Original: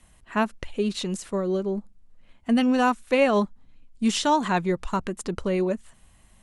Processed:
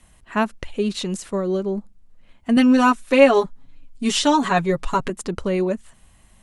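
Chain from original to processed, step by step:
0:02.56–0:05.10: comb filter 7.2 ms, depth 91%
level +3 dB

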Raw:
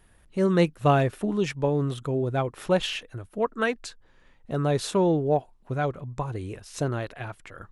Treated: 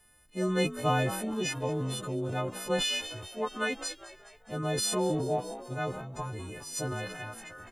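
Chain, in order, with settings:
every partial snapped to a pitch grid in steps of 3 semitones
echo with shifted repeats 209 ms, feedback 60%, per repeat +59 Hz, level −18 dB
transient designer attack 0 dB, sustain +7 dB
level −7 dB

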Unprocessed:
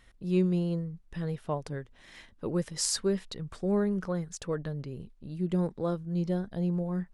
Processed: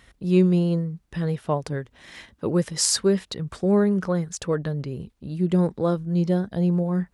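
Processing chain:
high-pass filter 43 Hz 24 dB per octave
level +8 dB

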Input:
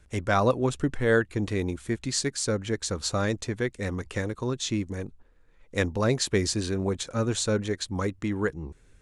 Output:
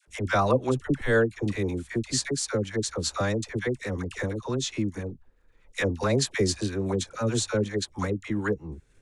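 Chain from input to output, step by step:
transient designer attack +1 dB, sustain −5 dB
all-pass dispersion lows, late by 75 ms, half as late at 730 Hz

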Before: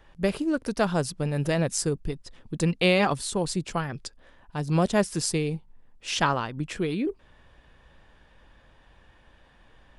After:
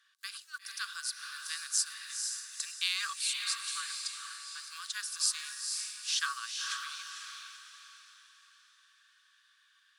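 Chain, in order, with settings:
one scale factor per block 7 bits
Chebyshev high-pass with heavy ripple 1,100 Hz, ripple 9 dB
parametric band 10,000 Hz +11.5 dB 2.1 octaves
on a send: feedback delay with all-pass diffusion 480 ms, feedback 43%, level −4 dB
on the sum: level −4.5 dB

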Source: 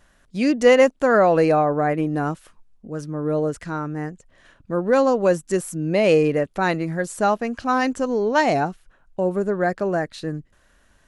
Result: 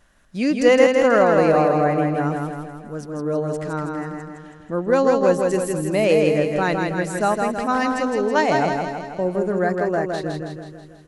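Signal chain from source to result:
repeating echo 162 ms, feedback 56%, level −4 dB
level −1 dB

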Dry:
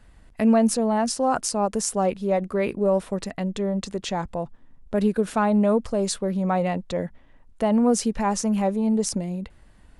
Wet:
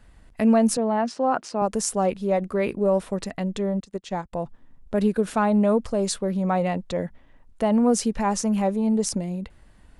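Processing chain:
0:00.77–0:01.62: band-pass filter 200–3,200 Hz
0:03.80–0:04.33: expander for the loud parts 2.5 to 1, over −42 dBFS

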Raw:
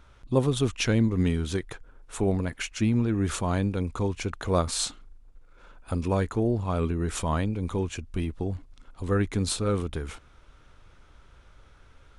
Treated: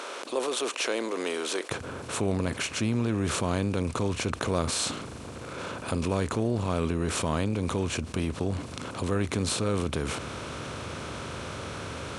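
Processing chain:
compressor on every frequency bin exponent 0.6
high-pass filter 370 Hz 24 dB per octave, from 0:01.70 72 Hz
envelope flattener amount 50%
level −6.5 dB

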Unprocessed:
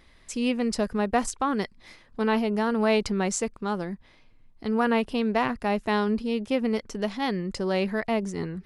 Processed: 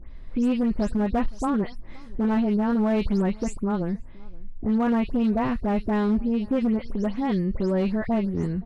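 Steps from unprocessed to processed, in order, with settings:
every frequency bin delayed by itself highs late, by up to 152 ms
spectral tilt −3.5 dB per octave
in parallel at +2 dB: downward compressor 8 to 1, threshold −28 dBFS, peak gain reduction 15.5 dB
on the sum: gain into a clipping stage and back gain 12 dB
slap from a distant wall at 89 metres, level −24 dB
level −5.5 dB

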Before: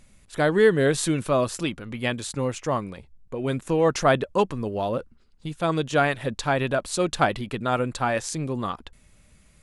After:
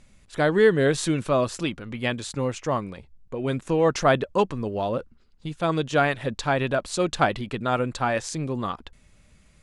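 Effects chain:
low-pass filter 8,000 Hz 12 dB per octave

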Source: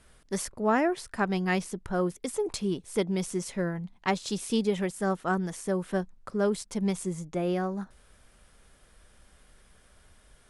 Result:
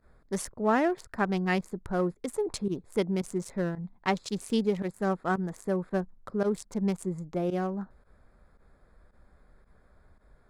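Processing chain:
adaptive Wiener filter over 15 samples
fake sidechain pumping 112 BPM, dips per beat 1, −18 dB, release 60 ms

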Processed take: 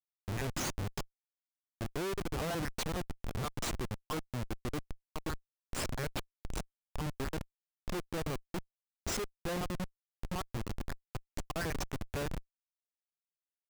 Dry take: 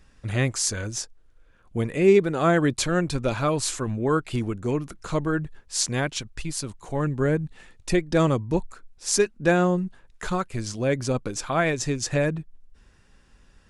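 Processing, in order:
time-frequency cells dropped at random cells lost 46%
comparator with hysteresis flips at −27 dBFS
level −7 dB

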